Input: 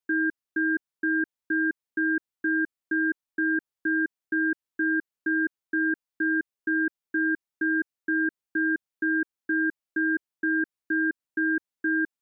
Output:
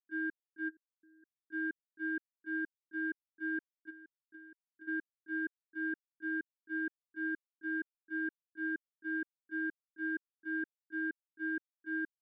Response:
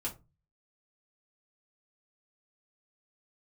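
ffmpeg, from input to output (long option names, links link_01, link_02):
-filter_complex "[0:a]asplit=3[link_01][link_02][link_03];[link_01]afade=type=out:start_time=0.68:duration=0.02[link_04];[link_02]equalizer=frequency=1300:width_type=o:width=2.2:gain=-12.5,afade=type=in:start_time=0.68:duration=0.02,afade=type=out:start_time=1.22:duration=0.02[link_05];[link_03]afade=type=in:start_time=1.22:duration=0.02[link_06];[link_04][link_05][link_06]amix=inputs=3:normalize=0,agate=range=-41dB:threshold=-21dB:ratio=16:detection=peak,asplit=3[link_07][link_08][link_09];[link_07]afade=type=out:start_time=3.89:duration=0.02[link_10];[link_08]acompressor=threshold=-58dB:ratio=16,afade=type=in:start_time=3.89:duration=0.02,afade=type=out:start_time=4.87:duration=0.02[link_11];[link_09]afade=type=in:start_time=4.87:duration=0.02[link_12];[link_10][link_11][link_12]amix=inputs=3:normalize=0,volume=6.5dB"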